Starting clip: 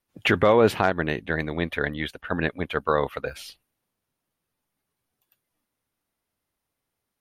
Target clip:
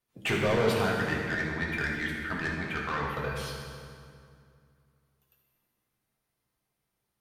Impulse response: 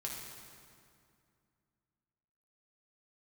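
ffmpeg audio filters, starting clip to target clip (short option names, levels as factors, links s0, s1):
-filter_complex "[0:a]asettb=1/sr,asplit=3[s0][s1][s2];[s0]atrim=end=0.804[s3];[s1]atrim=start=0.8:end=3.1,asetpts=PTS-STARTPTS,afade=t=in:d=0.004:c=qsin,afade=t=out:st=2.296:d=0.004:c=qsin,equalizer=f=125:t=o:w=1:g=-4,equalizer=f=500:t=o:w=1:g=-11,equalizer=f=2000:t=o:w=1:g=5,equalizer=f=4000:t=o:w=1:g=-10[s4];[s2]atrim=start=3.096[s5];[s3][s4]acrossfade=d=0.004:c1=hsin:c2=qsin[s6];[s6][s5]acrossfade=d=0.004:c1=qsin:c2=hsin,asoftclip=type=tanh:threshold=0.0841[s7];[1:a]atrim=start_sample=2205[s8];[s7][s8]afir=irnorm=-1:irlink=0"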